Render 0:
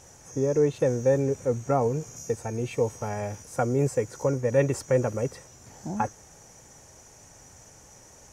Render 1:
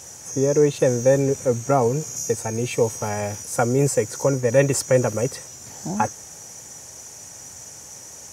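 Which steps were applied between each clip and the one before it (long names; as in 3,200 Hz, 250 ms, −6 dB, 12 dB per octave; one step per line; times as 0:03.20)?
high-pass filter 78 Hz
high-shelf EQ 3,400 Hz +10.5 dB
level +5 dB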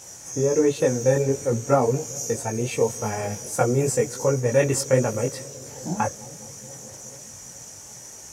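bucket-brigade delay 212 ms, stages 1,024, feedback 81%, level −21.5 dB
multi-voice chorus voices 6, 1.2 Hz, delay 20 ms, depth 3.6 ms
level +1.5 dB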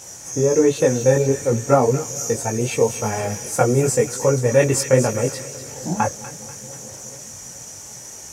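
delay with a high-pass on its return 243 ms, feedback 46%, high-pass 1,600 Hz, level −9.5 dB
level +4 dB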